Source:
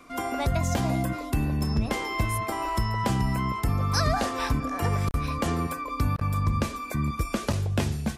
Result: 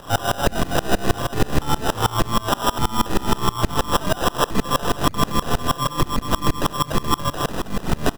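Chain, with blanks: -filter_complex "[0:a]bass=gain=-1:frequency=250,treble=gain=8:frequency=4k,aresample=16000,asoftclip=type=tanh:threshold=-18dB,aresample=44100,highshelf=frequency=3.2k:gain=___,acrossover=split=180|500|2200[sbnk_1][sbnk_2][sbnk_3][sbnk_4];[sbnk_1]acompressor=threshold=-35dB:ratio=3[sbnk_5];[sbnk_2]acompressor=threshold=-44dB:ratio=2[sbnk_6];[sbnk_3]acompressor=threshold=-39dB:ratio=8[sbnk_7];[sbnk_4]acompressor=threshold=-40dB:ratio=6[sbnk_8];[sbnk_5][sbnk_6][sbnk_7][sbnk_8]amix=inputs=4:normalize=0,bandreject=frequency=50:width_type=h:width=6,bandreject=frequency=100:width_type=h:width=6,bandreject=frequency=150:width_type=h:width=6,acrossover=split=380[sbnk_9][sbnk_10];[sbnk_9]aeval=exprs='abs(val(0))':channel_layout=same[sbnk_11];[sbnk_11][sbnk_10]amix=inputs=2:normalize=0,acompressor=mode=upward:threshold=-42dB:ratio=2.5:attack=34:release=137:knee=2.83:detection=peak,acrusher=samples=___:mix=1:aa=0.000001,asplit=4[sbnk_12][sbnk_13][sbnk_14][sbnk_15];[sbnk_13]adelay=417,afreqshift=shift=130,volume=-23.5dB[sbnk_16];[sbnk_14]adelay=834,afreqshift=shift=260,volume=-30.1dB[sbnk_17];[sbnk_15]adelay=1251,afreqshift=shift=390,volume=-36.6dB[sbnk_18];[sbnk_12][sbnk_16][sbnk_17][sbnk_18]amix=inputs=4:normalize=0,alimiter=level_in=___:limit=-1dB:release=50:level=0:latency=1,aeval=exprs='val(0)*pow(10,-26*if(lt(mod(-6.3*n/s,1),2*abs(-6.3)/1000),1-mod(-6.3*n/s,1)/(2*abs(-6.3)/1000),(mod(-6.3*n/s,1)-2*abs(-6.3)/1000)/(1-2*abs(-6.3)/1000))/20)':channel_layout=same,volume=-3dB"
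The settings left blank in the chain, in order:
5, 20, 26.5dB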